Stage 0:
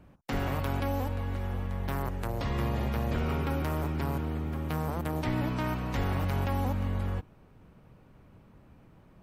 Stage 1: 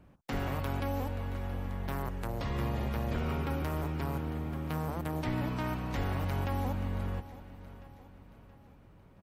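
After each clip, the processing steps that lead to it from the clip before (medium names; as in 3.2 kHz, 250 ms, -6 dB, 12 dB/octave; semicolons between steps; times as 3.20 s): feedback delay 675 ms, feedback 47%, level -15.5 dB; trim -3 dB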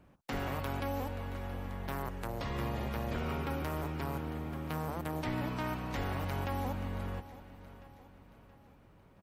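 bass shelf 240 Hz -5 dB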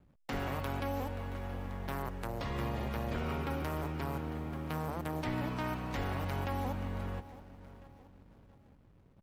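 hysteresis with a dead band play -55.5 dBFS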